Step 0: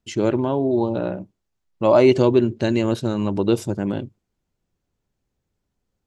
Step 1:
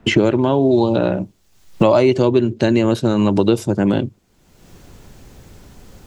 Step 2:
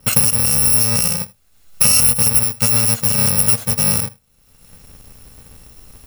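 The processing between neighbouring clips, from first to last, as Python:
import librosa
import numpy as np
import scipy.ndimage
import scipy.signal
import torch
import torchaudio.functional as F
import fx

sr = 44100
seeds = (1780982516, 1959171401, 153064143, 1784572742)

y1 = fx.band_squash(x, sr, depth_pct=100)
y1 = y1 * 10.0 ** (4.5 / 20.0)
y2 = fx.bit_reversed(y1, sr, seeds[0], block=128)
y2 = y2 + 10.0 ** (-22.5 / 20.0) * np.pad(y2, (int(80 * sr / 1000.0), 0))[:len(y2)]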